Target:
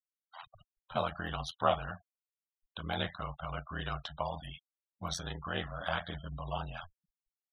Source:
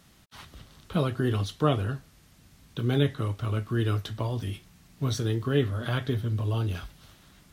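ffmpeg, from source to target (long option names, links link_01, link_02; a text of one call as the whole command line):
ffmpeg -i in.wav -af "lowshelf=frequency=520:width_type=q:width=3:gain=-10.5,aeval=exprs='val(0)*sin(2*PI*42*n/s)':channel_layout=same,afftfilt=real='re*gte(hypot(re,im),0.00562)':imag='im*gte(hypot(re,im),0.00562)':win_size=1024:overlap=0.75" out.wav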